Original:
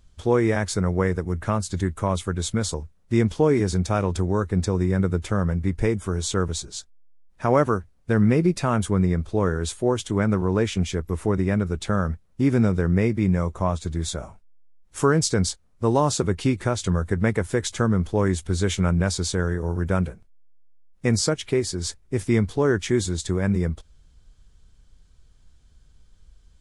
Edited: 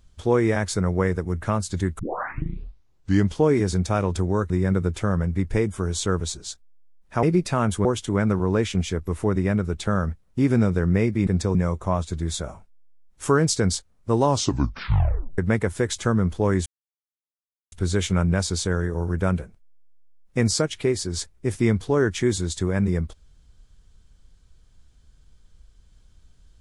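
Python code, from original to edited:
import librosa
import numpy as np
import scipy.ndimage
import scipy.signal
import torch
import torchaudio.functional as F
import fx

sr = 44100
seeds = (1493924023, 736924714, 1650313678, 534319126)

y = fx.edit(x, sr, fx.tape_start(start_s=1.99, length_s=1.37),
    fx.move(start_s=4.5, length_s=0.28, to_s=13.29),
    fx.cut(start_s=7.51, length_s=0.83),
    fx.cut(start_s=8.96, length_s=0.91),
    fx.tape_stop(start_s=15.99, length_s=1.13),
    fx.insert_silence(at_s=18.4, length_s=1.06), tone=tone)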